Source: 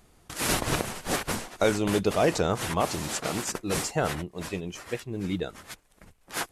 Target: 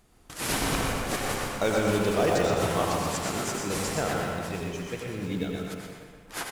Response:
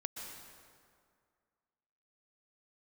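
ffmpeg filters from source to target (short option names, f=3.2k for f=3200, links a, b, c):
-filter_complex "[0:a]asplit=2[a][b];[b]adelay=123,lowpass=f=4.6k:p=1,volume=-3.5dB,asplit=2[c][d];[d]adelay=123,lowpass=f=4.6k:p=1,volume=0.48,asplit=2[e][f];[f]adelay=123,lowpass=f=4.6k:p=1,volume=0.48,asplit=2[g][h];[h]adelay=123,lowpass=f=4.6k:p=1,volume=0.48,asplit=2[i][j];[j]adelay=123,lowpass=f=4.6k:p=1,volume=0.48,asplit=2[k][l];[l]adelay=123,lowpass=f=4.6k:p=1,volume=0.48[m];[a][c][e][g][i][k][m]amix=inputs=7:normalize=0[n];[1:a]atrim=start_sample=2205,asetrate=66150,aresample=44100[o];[n][o]afir=irnorm=-1:irlink=0,asplit=2[p][q];[q]acrusher=bits=3:mode=log:mix=0:aa=0.000001,volume=-7dB[r];[p][r]amix=inputs=2:normalize=0"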